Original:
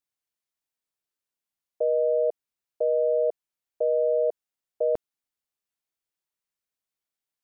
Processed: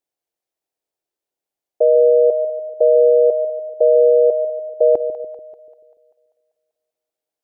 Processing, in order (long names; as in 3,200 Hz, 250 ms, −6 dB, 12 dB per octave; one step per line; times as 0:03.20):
flat-topped bell 500 Hz +11 dB
echo with a time of its own for lows and highs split 610 Hz, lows 145 ms, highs 195 ms, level −11 dB